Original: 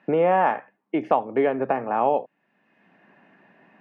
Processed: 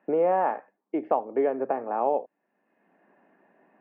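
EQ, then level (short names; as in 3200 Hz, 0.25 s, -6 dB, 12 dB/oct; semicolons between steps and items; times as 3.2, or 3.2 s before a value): BPF 380–2300 Hz; tilt shelf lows +7 dB, about 760 Hz; -4.0 dB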